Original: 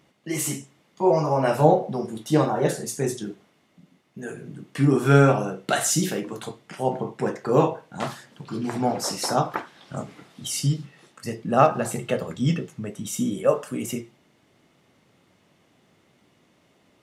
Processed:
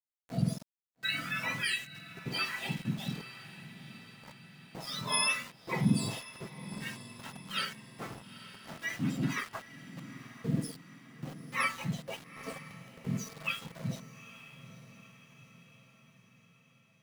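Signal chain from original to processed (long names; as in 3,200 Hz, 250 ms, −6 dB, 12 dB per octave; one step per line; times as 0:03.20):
frequency axis turned over on the octave scale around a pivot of 1,200 Hz
downward expander −40 dBFS
in parallel at −1 dB: downward compressor, threshold −25 dBFS, peak gain reduction 15.5 dB
on the sum: low-pass that shuts in the quiet parts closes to 480 Hz, open at −13 dBFS
tuned comb filter 660 Hz, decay 0.27 s, mix 80%
centre clipping without the shift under −43.5 dBFS
on a send: feedback delay with all-pass diffusion 892 ms, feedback 53%, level −14 dB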